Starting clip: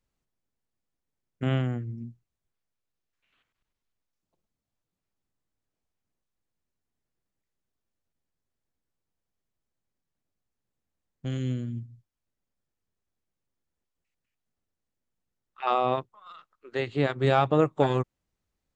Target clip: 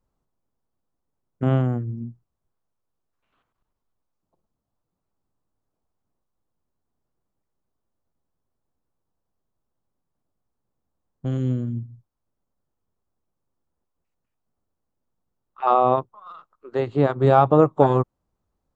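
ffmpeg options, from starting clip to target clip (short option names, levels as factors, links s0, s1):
-af "highshelf=f=1500:t=q:w=1.5:g=-9.5,volume=2"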